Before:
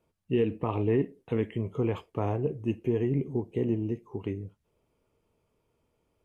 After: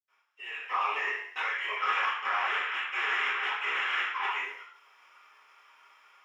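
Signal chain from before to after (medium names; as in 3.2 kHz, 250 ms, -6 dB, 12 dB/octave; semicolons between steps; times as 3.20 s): 1.68–4.20 s: CVSD coder 16 kbps; high-pass 1.3 kHz 24 dB/octave; compression, threshold -51 dBFS, peak gain reduction 12.5 dB; peak limiter -47.5 dBFS, peak gain reduction 11 dB; waveshaping leveller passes 2; level rider gain up to 11 dB; reverberation, pre-delay 77 ms, DRR -60 dB; trim +7 dB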